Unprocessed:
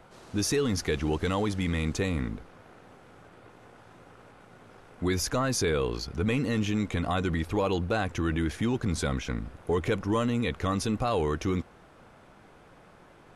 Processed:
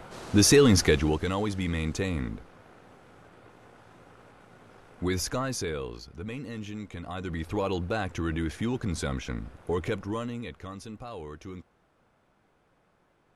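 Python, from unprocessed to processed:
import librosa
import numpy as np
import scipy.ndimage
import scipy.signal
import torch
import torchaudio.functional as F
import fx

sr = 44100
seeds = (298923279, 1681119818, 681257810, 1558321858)

y = fx.gain(x, sr, db=fx.line((0.82, 8.5), (1.24, -1.0), (5.23, -1.0), (6.09, -10.0), (7.05, -10.0), (7.51, -2.0), (9.84, -2.0), (10.75, -13.0)))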